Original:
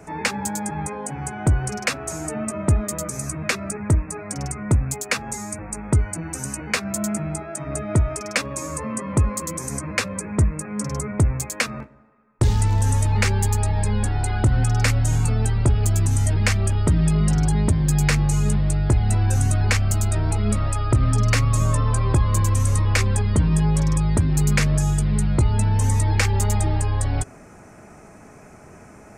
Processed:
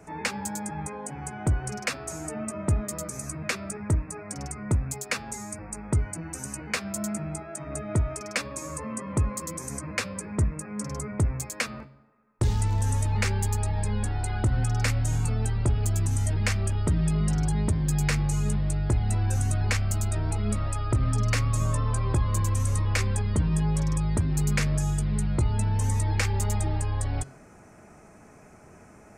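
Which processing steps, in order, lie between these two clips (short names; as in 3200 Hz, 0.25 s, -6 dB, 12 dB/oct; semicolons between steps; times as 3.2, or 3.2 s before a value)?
de-hum 135.6 Hz, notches 39; gain -6 dB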